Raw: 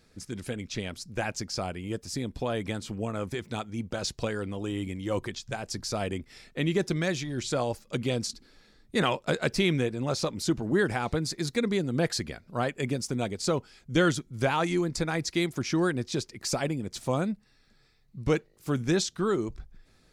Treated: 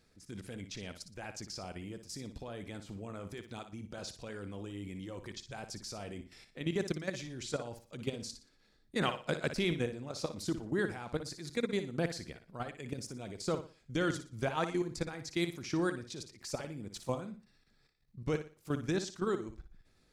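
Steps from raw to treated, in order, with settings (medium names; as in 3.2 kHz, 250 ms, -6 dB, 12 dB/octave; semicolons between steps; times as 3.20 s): level held to a coarse grid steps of 13 dB; flutter echo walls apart 10.1 m, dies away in 0.35 s; trim -4.5 dB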